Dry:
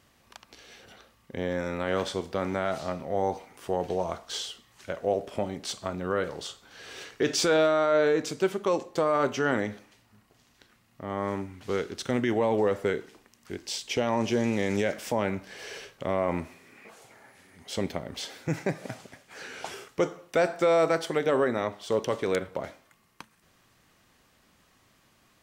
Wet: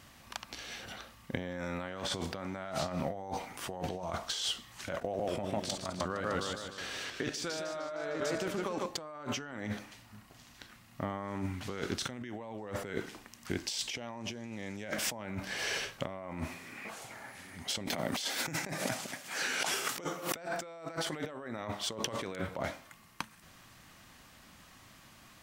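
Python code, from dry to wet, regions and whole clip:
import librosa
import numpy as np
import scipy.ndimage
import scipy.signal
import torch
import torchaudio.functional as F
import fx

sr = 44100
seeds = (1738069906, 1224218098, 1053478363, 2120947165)

y = fx.chain(x, sr, fx.level_steps(step_db=16),
    fx.echo_warbled(ms=153, feedback_pct=53, rate_hz=2.8, cents=142, wet_db=-6), at=(4.98, 8.86))
y = fx.chain(y, sr, fx.highpass(hz=180.0, slope=12),
    fx.high_shelf(hz=5200.0, db=7.0),
    fx.pre_swell(db_per_s=130.0), at=(17.86, 20.36))
y = fx.peak_eq(y, sr, hz=430.0, db=-7.5, octaves=0.63)
y = fx.over_compress(y, sr, threshold_db=-39.0, ratio=-1.0)
y = y * librosa.db_to_amplitude(1.0)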